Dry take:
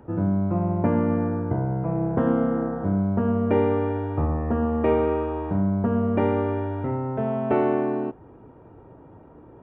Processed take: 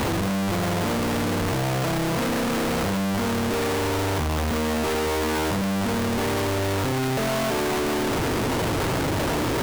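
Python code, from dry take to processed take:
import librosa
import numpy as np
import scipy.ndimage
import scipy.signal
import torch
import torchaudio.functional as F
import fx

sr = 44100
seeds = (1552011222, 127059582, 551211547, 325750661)

y = np.sign(x) * np.sqrt(np.mean(np.square(x)))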